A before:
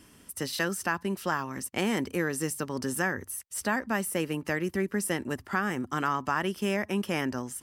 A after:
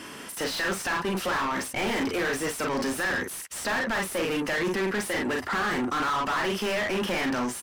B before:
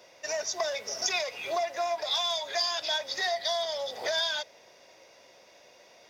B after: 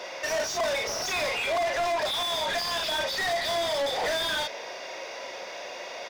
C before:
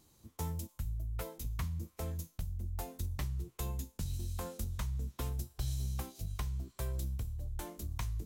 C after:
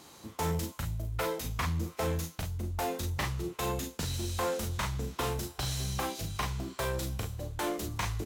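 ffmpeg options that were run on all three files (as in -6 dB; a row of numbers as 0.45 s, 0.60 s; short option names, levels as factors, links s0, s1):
-filter_complex "[0:a]aecho=1:1:37|48:0.398|0.335,asplit=2[s0][s1];[s1]highpass=f=720:p=1,volume=63.1,asoftclip=type=tanh:threshold=0.299[s2];[s0][s2]amix=inputs=2:normalize=0,lowpass=f=2500:p=1,volume=0.501,volume=0.376"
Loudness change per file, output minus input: +3.0 LU, +1.5 LU, +6.0 LU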